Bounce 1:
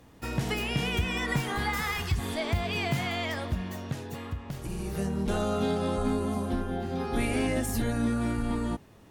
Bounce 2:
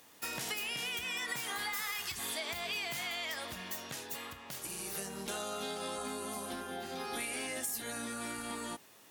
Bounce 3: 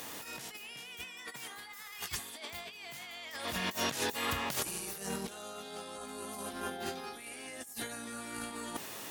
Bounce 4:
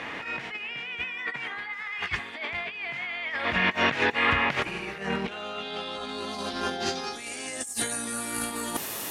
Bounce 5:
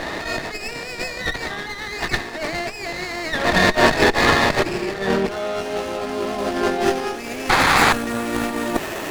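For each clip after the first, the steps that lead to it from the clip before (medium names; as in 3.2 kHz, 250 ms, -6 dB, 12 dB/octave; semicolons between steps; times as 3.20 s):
tilt EQ +3.5 dB/octave; compression, threshold -32 dBFS, peak gain reduction 9.5 dB; bass shelf 140 Hz -11.5 dB; trim -2.5 dB
in parallel at -4 dB: integer overflow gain 25 dB; on the sum: compressor with a negative ratio -42 dBFS, ratio -0.5; trim +3 dB
low-pass sweep 2.2 kHz -> 13 kHz, 5.06–8.55 s; trim +8.5 dB
small resonant body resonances 360/620/1800/2600 Hz, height 9 dB, ringing for 25 ms; painted sound noise, 7.49–7.93 s, 720–2700 Hz -20 dBFS; sliding maximum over 9 samples; trim +6.5 dB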